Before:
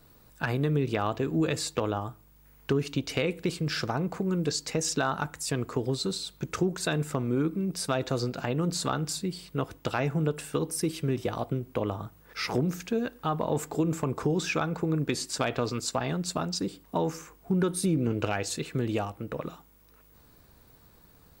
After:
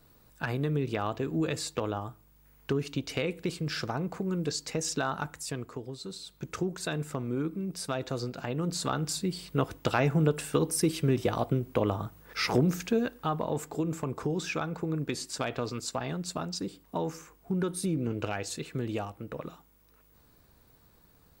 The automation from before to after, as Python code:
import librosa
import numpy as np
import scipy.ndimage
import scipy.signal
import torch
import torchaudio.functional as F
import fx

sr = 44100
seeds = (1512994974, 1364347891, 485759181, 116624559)

y = fx.gain(x, sr, db=fx.line((5.34, -3.0), (5.94, -12.0), (6.47, -4.5), (8.41, -4.5), (9.53, 2.5), (12.86, 2.5), (13.61, -4.0)))